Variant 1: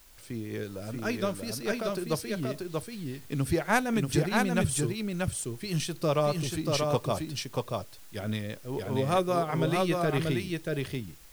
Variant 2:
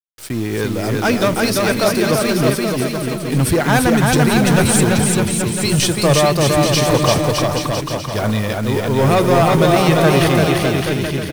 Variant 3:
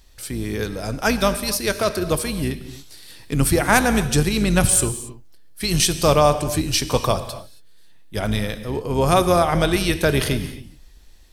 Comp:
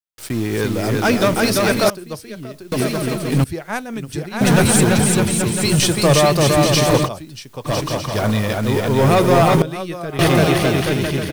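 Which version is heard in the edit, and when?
2
0:01.90–0:02.72: punch in from 1
0:03.44–0:04.41: punch in from 1
0:07.06–0:07.67: punch in from 1, crossfade 0.06 s
0:09.62–0:10.19: punch in from 1
not used: 3

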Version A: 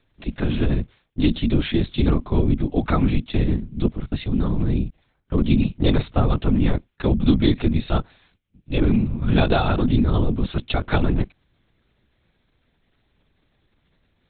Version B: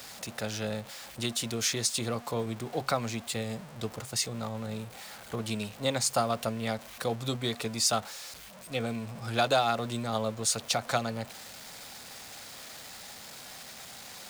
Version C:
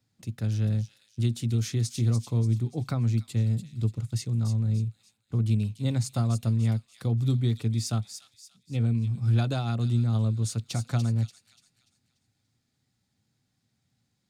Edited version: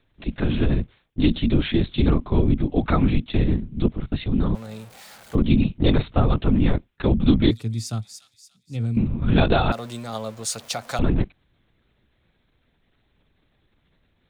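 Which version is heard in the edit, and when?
A
0:04.55–0:05.35: punch in from B
0:07.51–0:08.97: punch in from C
0:09.72–0:10.99: punch in from B

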